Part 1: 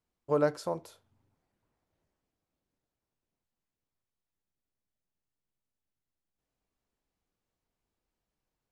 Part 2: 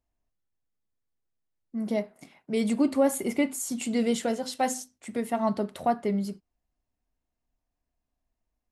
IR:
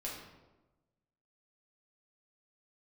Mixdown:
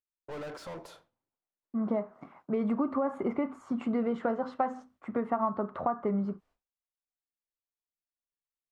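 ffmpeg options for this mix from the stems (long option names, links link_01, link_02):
-filter_complex "[0:a]asplit=2[link_01][link_02];[link_02]highpass=frequency=720:poles=1,volume=38dB,asoftclip=type=tanh:threshold=-15dB[link_03];[link_01][link_03]amix=inputs=2:normalize=0,lowpass=frequency=1800:poles=1,volume=-6dB,volume=-18.5dB,asplit=2[link_04][link_05];[link_05]volume=-18.5dB[link_06];[1:a]alimiter=limit=-19dB:level=0:latency=1:release=209,lowpass=frequency=1200:width_type=q:width=4.9,volume=1dB,asplit=2[link_07][link_08];[link_08]apad=whole_len=384257[link_09];[link_04][link_09]sidechaincompress=threshold=-40dB:ratio=8:attack=16:release=142[link_10];[2:a]atrim=start_sample=2205[link_11];[link_06][link_11]afir=irnorm=-1:irlink=0[link_12];[link_10][link_07][link_12]amix=inputs=3:normalize=0,agate=range=-33dB:threshold=-55dB:ratio=3:detection=peak,acompressor=threshold=-26dB:ratio=4"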